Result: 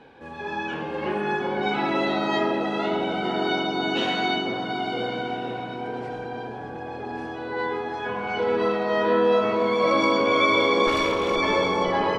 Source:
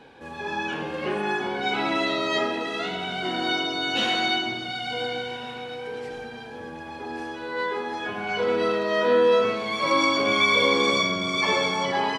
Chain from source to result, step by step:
0:10.87–0:11.36: lower of the sound and its delayed copy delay 2.3 ms
high-shelf EQ 4,800 Hz −11.5 dB
bucket-brigade delay 501 ms, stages 4,096, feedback 72%, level −3.5 dB

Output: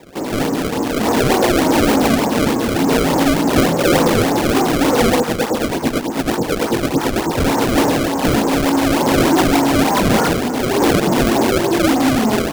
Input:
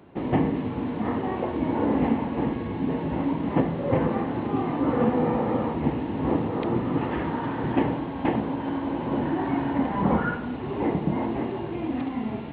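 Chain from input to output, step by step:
tilt shelving filter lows +8 dB, about 910 Hz
mid-hump overdrive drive 22 dB, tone 1,400 Hz, clips at −9 dBFS
0:05.20–0:07.38: two-band tremolo in antiphase 9.1 Hz, depth 100%, crossover 890 Hz
mains-hum notches 50/100/150/200/250/300/350/400/450/500 Hz
automatic gain control
low-shelf EQ 280 Hz −8.5 dB
sample-and-hold swept by an LFO 28×, swing 160% 3.4 Hz

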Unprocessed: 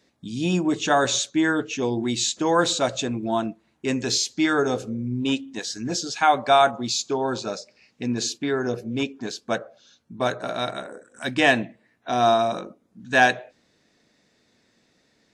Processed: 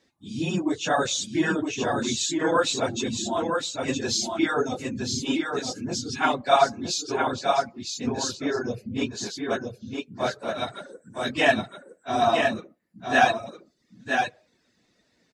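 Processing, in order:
random phases in long frames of 50 ms
reverb reduction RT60 0.68 s
single-tap delay 964 ms −4.5 dB
level −2.5 dB

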